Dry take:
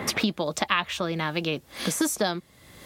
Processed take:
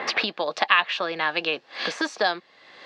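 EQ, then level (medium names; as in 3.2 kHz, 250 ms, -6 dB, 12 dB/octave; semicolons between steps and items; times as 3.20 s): cabinet simulation 400–4900 Hz, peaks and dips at 480 Hz +3 dB, 760 Hz +6 dB, 1.1 kHz +4 dB, 1.7 kHz +8 dB, 2.7 kHz +6 dB, 4.4 kHz +6 dB; 0.0 dB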